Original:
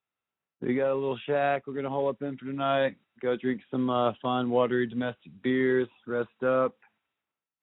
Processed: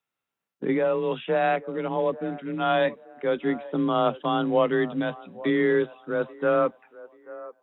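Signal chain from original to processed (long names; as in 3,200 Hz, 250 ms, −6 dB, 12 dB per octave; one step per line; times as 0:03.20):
delay with a band-pass on its return 835 ms, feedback 31%, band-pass 720 Hz, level −17 dB
frequency shifter +26 Hz
level +3 dB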